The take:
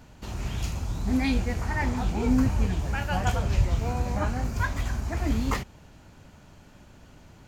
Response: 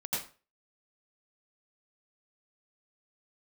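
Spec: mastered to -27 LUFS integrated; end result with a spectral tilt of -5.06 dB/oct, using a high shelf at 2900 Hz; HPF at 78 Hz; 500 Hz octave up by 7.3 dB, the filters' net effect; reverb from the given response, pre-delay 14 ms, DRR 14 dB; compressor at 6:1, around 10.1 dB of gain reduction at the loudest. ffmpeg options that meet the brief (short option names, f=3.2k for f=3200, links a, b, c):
-filter_complex "[0:a]highpass=78,equalizer=f=500:t=o:g=8.5,highshelf=f=2.9k:g=7,acompressor=threshold=-29dB:ratio=6,asplit=2[a][b];[1:a]atrim=start_sample=2205,adelay=14[c];[b][c]afir=irnorm=-1:irlink=0,volume=-18.5dB[d];[a][d]amix=inputs=2:normalize=0,volume=6.5dB"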